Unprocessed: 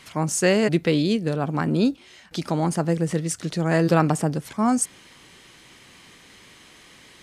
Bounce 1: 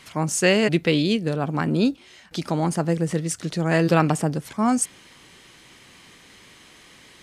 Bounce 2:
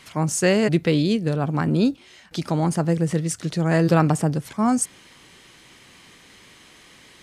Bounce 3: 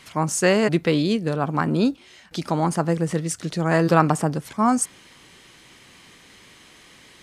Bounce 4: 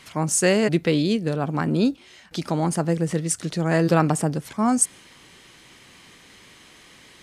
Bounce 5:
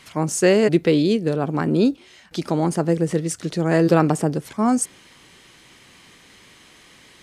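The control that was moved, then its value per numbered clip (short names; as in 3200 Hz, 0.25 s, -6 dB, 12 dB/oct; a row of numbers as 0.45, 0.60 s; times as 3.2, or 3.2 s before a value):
dynamic EQ, frequency: 2800, 110, 1100, 9300, 390 Hz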